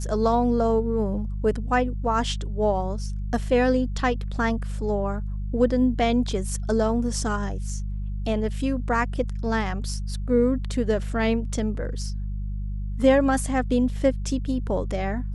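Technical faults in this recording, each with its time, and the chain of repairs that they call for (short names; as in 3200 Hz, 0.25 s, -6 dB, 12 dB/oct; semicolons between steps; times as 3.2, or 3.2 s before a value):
hum 50 Hz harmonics 4 -29 dBFS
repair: de-hum 50 Hz, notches 4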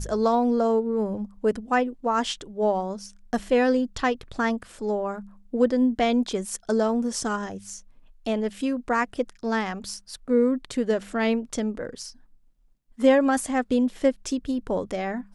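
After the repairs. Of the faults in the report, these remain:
none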